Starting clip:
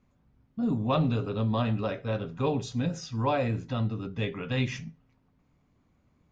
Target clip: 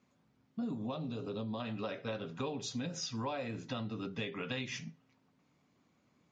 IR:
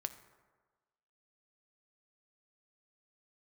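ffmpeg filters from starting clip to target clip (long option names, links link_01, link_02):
-filter_complex "[0:a]highpass=170,lowpass=6400,highshelf=frequency=3500:gain=10.5,acompressor=threshold=-33dB:ratio=12,asettb=1/sr,asplit=3[link_01][link_02][link_03];[link_01]atrim=end=0.864[link_04];[link_02]atrim=start=0.86:end=1.6,asetpts=PTS-STARTPTS,afade=type=in:duration=0.004:curve=qsin,afade=type=out:start_time=0.736:duration=0.004:curve=qsin,equalizer=frequency=1900:width=0.84:gain=-9.5[link_05];[link_03]atrim=start=1.596[link_06];[link_04][link_05]acrossfade=duration=0.004:curve1=hsin:curve2=qsin[link_07];[link_07][link_06]acrossfade=duration=0.004:curve1=qsin:curve2=hsin,volume=-1dB" -ar 44100 -c:a libmp3lame -b:a 48k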